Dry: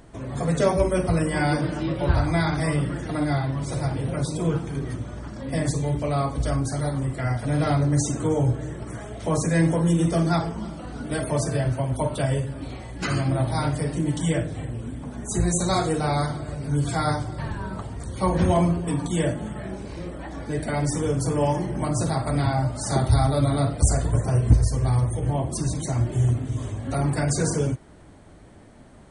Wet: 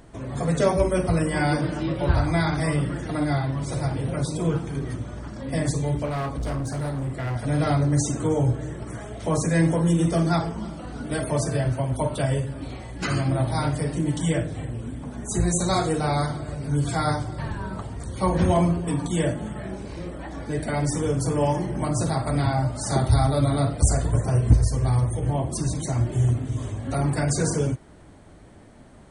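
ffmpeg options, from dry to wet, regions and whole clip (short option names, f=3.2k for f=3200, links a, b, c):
-filter_complex "[0:a]asettb=1/sr,asplit=3[a][b][c];[a]atrim=end=6.054[d];[b]atrim=start=6.05:end=7.36,asetpts=PTS-STARTPTS,afade=t=in:d=0.004:c=qsin,afade=t=out:st=1.306:d=0.004:c=qsin,highshelf=f=3.9k:g=-5,asoftclip=type=hard:threshold=-24.5dB[e];[c]atrim=start=7.356[f];[d][e]acrossfade=d=0.004:c1=hsin:c2=qsin[g];[g][f]acrossfade=d=0.004:c1=qsin:c2=hsin"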